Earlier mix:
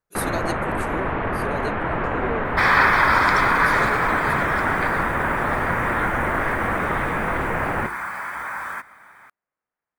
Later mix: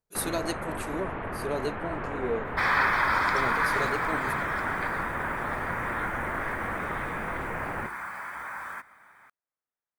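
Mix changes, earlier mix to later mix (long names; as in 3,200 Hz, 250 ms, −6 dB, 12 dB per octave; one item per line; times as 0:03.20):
first sound −10.0 dB
second sound −7.5 dB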